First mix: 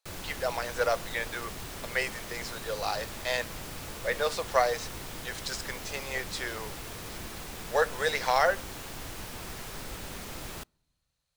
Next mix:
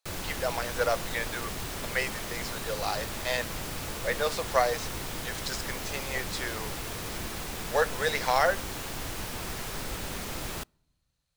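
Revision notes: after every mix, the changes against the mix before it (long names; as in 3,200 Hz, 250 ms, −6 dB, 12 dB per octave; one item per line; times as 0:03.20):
background +4.5 dB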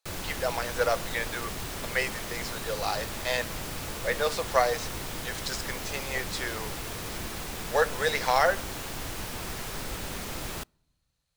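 speech: send +8.0 dB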